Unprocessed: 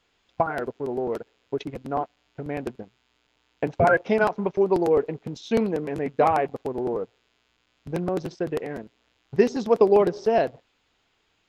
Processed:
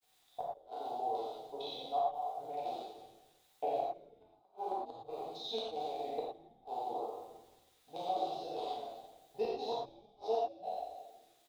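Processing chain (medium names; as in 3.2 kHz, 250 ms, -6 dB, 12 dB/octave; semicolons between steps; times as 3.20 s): spectral sustain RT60 1.10 s; two resonant band-passes 1.7 kHz, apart 2.3 oct; word length cut 12-bit, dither triangular; granulator 90 ms, grains 22 per s, spray 16 ms, pitch spread up and down by 0 st; inverted gate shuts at -24 dBFS, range -41 dB; on a send: frequency-shifting echo 164 ms, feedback 41%, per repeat -130 Hz, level -20 dB; on the sum: gated-style reverb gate 140 ms flat, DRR -4.5 dB; trim -3.5 dB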